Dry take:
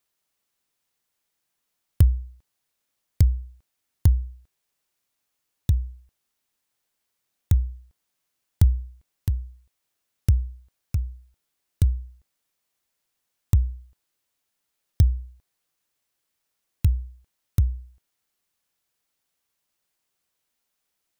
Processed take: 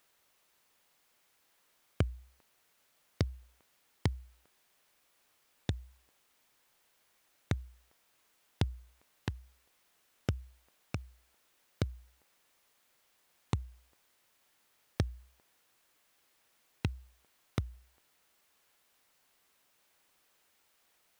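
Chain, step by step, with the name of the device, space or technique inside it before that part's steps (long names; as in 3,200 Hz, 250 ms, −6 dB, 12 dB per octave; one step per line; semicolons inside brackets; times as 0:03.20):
tape answering machine (band-pass filter 360–3,100 Hz; soft clipping −27 dBFS, distortion −14 dB; tape wow and flutter; white noise bed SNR 30 dB)
level +9.5 dB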